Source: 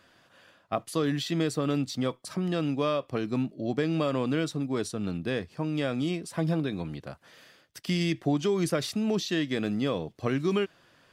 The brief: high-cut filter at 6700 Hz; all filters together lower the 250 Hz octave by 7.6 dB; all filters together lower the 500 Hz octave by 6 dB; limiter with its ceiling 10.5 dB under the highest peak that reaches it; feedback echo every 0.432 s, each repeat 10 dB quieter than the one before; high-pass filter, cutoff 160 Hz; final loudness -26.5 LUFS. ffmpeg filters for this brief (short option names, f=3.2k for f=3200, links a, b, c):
-af "highpass=160,lowpass=6.7k,equalizer=f=250:t=o:g=-7.5,equalizer=f=500:t=o:g=-5,alimiter=level_in=2dB:limit=-24dB:level=0:latency=1,volume=-2dB,aecho=1:1:432|864|1296|1728:0.316|0.101|0.0324|0.0104,volume=10.5dB"